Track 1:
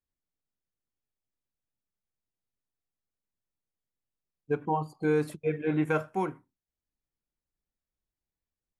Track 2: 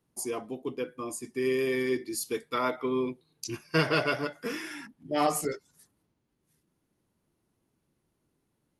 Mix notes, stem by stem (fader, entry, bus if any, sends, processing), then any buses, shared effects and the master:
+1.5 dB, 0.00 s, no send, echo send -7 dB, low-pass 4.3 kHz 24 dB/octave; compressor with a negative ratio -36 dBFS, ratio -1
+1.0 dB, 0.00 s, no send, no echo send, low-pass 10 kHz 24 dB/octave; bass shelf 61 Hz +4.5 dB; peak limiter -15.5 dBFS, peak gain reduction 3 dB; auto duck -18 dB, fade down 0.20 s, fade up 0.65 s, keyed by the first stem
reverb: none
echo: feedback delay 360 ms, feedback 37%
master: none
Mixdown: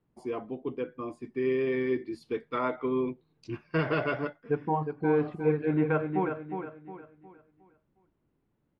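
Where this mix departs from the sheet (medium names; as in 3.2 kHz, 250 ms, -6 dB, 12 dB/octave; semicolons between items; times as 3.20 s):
stem 1: missing compressor with a negative ratio -36 dBFS, ratio -1; master: extra distance through air 430 m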